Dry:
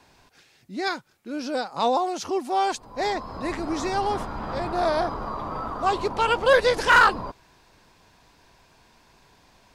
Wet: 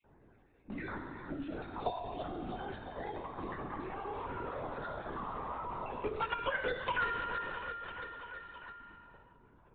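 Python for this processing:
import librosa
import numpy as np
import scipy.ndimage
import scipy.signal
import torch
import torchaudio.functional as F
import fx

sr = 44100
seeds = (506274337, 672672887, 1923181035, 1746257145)

p1 = fx.spec_dropout(x, sr, seeds[0], share_pct=33)
p2 = fx.quant_dither(p1, sr, seeds[1], bits=6, dither='none')
p3 = p1 + (p2 * 10.0 ** (-6.0 / 20.0))
p4 = fx.peak_eq(p3, sr, hz=710.0, db=-2.5, octaves=0.65)
p5 = fx.level_steps(p4, sr, step_db=19)
p6 = fx.env_lowpass(p5, sr, base_hz=930.0, full_db=-24.0)
p7 = fx.comb_fb(p6, sr, f0_hz=140.0, decay_s=1.4, harmonics='all', damping=0.0, mix_pct=90)
p8 = p7 + fx.echo_feedback(p7, sr, ms=333, feedback_pct=50, wet_db=-13, dry=0)
p9 = fx.lpc_vocoder(p8, sr, seeds[2], excitation='whisper', order=16)
p10 = fx.band_squash(p9, sr, depth_pct=70)
y = p10 * 10.0 ** (9.5 / 20.0)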